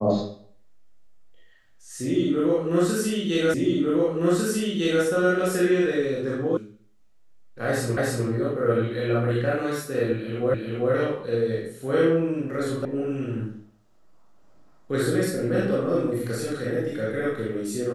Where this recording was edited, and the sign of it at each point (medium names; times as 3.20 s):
3.54 s: repeat of the last 1.5 s
6.57 s: sound stops dead
7.97 s: repeat of the last 0.3 s
10.54 s: repeat of the last 0.39 s
12.85 s: sound stops dead